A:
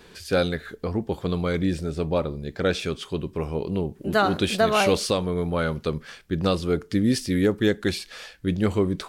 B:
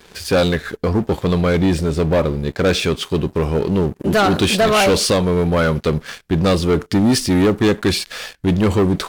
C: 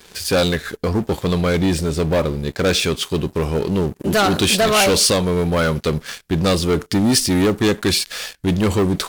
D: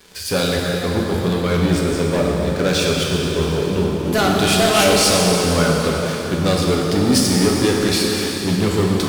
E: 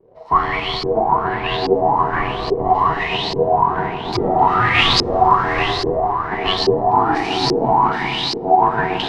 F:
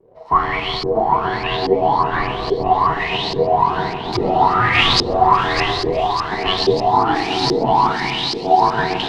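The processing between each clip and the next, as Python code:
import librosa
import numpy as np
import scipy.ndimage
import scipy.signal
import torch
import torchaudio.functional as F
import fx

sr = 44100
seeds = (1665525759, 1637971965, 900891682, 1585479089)

y1 = fx.leveller(x, sr, passes=3)
y2 = fx.high_shelf(y1, sr, hz=3800.0, db=8.5)
y2 = F.gain(torch.from_numpy(y2), -2.0).numpy()
y3 = fx.rev_plate(y2, sr, seeds[0], rt60_s=4.3, hf_ratio=0.8, predelay_ms=0, drr_db=-2.5)
y3 = F.gain(torch.from_numpy(y3), -3.5).numpy()
y4 = y3 * np.sin(2.0 * np.pi * 560.0 * np.arange(len(y3)) / sr)
y4 = fx.filter_lfo_lowpass(y4, sr, shape='saw_up', hz=1.2, low_hz=390.0, high_hz=4900.0, q=7.2)
y4 = F.gain(torch.from_numpy(y4), -2.0).numpy()
y5 = fx.echo_wet_highpass(y4, sr, ms=600, feedback_pct=74, hz=4000.0, wet_db=-9.0)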